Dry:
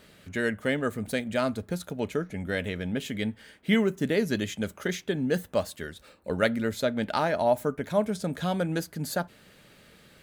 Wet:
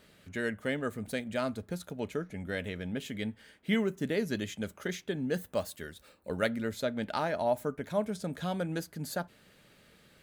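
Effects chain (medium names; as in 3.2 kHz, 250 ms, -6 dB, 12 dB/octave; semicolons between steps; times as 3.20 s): 5.41–6.47 s: treble shelf 11 kHz +9 dB; trim -5.5 dB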